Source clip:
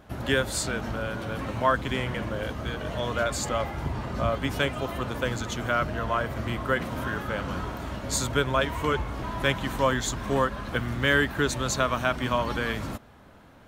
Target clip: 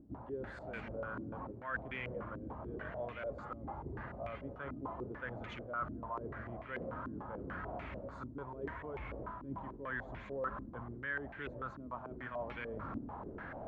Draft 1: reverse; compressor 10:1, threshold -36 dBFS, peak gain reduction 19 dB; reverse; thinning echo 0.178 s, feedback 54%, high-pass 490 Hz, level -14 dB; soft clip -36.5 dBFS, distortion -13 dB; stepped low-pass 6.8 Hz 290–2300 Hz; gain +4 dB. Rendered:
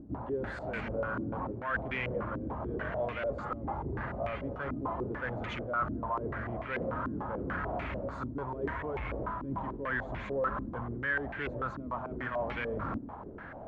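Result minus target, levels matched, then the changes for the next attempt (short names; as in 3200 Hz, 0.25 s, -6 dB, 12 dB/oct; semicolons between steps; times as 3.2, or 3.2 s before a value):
compressor: peak gain reduction -10.5 dB
change: compressor 10:1, threshold -47.5 dBFS, peak gain reduction 29.5 dB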